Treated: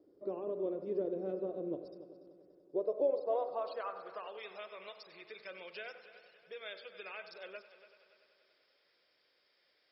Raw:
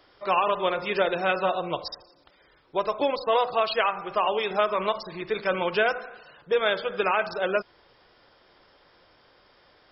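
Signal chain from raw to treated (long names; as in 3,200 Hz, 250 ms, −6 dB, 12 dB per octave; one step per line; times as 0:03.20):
0:00.74–0:02.78: gain on one half-wave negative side −3 dB
flat-topped bell 1,600 Hz −14 dB 2.4 octaves
downward compressor 1.5 to 1, threshold −38 dBFS, peak gain reduction 7 dB
band-pass filter sweep 320 Hz → 2,300 Hz, 0:02.48–0:04.54
echo machine with several playback heads 96 ms, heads first and third, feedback 61%, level −16 dB
level +3 dB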